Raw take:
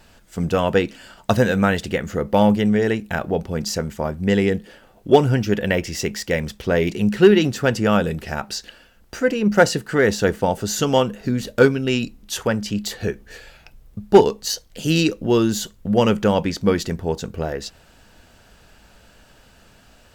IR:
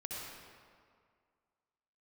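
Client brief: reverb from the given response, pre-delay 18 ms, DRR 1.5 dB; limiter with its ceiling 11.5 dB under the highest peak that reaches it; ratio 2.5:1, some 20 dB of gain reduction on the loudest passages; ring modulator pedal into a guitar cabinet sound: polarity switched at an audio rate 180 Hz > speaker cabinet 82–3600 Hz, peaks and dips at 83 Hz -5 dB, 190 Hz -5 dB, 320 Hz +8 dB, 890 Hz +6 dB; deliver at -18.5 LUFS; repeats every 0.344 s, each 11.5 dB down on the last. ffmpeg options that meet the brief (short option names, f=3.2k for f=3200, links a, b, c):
-filter_complex "[0:a]acompressor=threshold=-38dB:ratio=2.5,alimiter=level_in=2.5dB:limit=-24dB:level=0:latency=1,volume=-2.5dB,aecho=1:1:344|688|1032:0.266|0.0718|0.0194,asplit=2[a][b];[1:a]atrim=start_sample=2205,adelay=18[c];[b][c]afir=irnorm=-1:irlink=0,volume=-2dB[d];[a][d]amix=inputs=2:normalize=0,aeval=exprs='val(0)*sgn(sin(2*PI*180*n/s))':c=same,highpass=82,equalizer=f=83:t=q:w=4:g=-5,equalizer=f=190:t=q:w=4:g=-5,equalizer=f=320:t=q:w=4:g=8,equalizer=f=890:t=q:w=4:g=6,lowpass=f=3.6k:w=0.5412,lowpass=f=3.6k:w=1.3066,volume=15.5dB"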